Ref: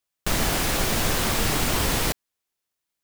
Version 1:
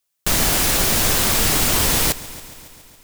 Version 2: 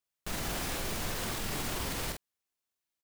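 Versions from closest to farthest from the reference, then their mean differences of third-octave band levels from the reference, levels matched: 2, 1; 1.5, 3.0 dB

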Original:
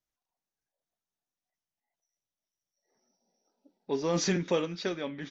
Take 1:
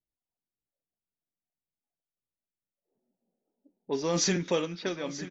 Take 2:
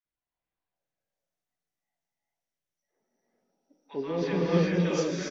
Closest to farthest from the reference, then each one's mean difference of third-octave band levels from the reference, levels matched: 1, 2; 2.0, 8.0 dB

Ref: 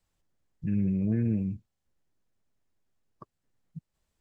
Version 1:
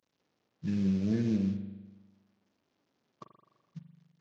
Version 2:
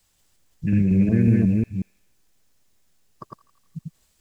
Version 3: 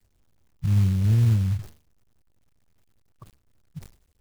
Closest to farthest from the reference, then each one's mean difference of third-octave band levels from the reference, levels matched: 2, 1, 3; 3.5, 5.5, 9.0 dB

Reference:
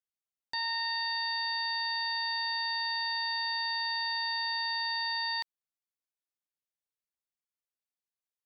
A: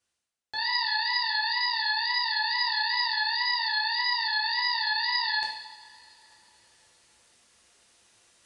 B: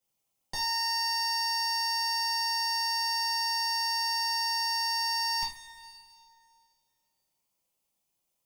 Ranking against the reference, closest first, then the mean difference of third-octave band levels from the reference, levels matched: A, B; 6.0, 8.0 dB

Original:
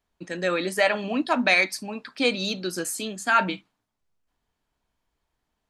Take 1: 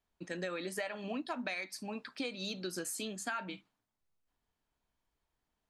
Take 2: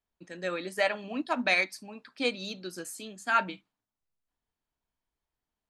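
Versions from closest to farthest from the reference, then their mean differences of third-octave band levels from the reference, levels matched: 2, 1; 2.5, 4.0 dB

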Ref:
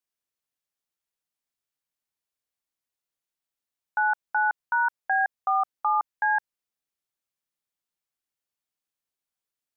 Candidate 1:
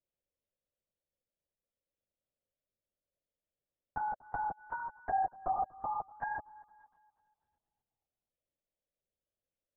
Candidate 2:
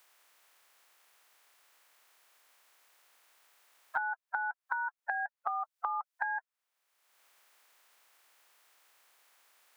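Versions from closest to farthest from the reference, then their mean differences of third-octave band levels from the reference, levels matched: 2, 1; 2.5, 8.5 dB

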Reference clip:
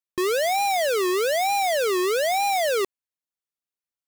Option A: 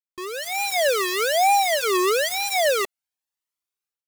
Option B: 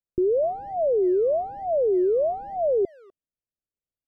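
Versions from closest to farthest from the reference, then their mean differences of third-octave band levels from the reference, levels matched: A, B; 3.5, 20.0 dB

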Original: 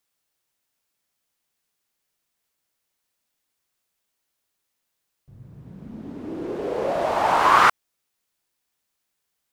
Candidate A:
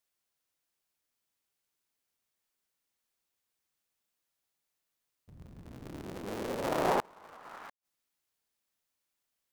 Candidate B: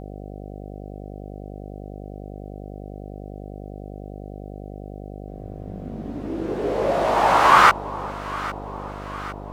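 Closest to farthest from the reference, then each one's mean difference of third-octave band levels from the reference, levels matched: B, A; 2.0, 14.0 dB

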